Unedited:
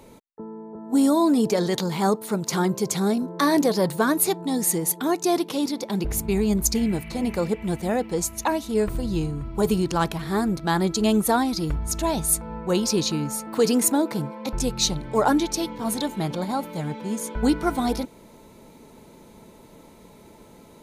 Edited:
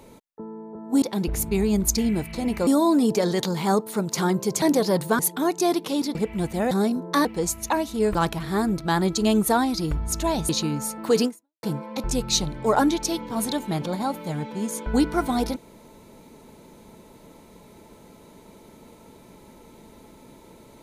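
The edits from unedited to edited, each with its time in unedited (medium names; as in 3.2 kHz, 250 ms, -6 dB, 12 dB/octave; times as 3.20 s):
2.97–3.51 s: move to 8.00 s
4.08–4.83 s: delete
5.79–7.44 s: move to 1.02 s
8.90–9.94 s: delete
12.28–12.98 s: delete
13.74–14.12 s: fade out exponential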